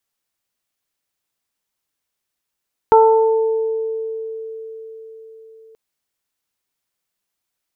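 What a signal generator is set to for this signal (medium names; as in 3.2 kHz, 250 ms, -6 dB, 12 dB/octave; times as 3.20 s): additive tone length 2.83 s, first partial 445 Hz, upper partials 1/-13 dB, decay 4.95 s, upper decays 1.37/0.61 s, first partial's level -8.5 dB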